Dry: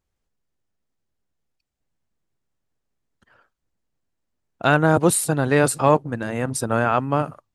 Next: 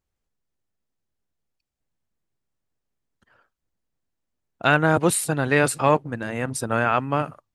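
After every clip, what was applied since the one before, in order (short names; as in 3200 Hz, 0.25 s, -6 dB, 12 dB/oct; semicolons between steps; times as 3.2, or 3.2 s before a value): dynamic EQ 2300 Hz, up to +7 dB, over -37 dBFS, Q 1; gain -3 dB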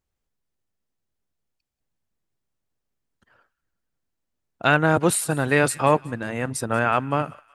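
thin delay 0.185 s, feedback 44%, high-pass 1400 Hz, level -20.5 dB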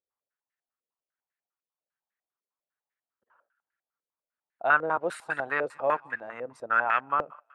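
differentiator; stepped low-pass 10 Hz 500–1800 Hz; gain +7.5 dB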